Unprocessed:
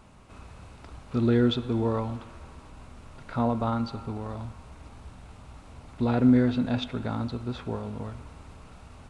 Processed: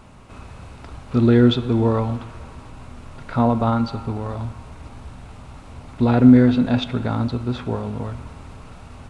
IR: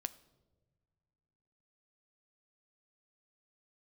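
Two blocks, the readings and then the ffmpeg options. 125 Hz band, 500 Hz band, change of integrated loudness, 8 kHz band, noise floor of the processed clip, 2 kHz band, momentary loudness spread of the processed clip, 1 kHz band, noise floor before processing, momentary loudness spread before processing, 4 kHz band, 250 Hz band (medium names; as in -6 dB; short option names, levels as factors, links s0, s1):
+9.0 dB, +7.5 dB, +8.5 dB, no reading, -42 dBFS, +7.0 dB, 18 LU, +7.5 dB, -50 dBFS, 20 LU, +6.5 dB, +8.5 dB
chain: -filter_complex "[0:a]asplit=2[s0][s1];[s1]bass=f=250:g=1,treble=f=4000:g=-3[s2];[1:a]atrim=start_sample=2205[s3];[s2][s3]afir=irnorm=-1:irlink=0,volume=2[s4];[s0][s4]amix=inputs=2:normalize=0,volume=0.891"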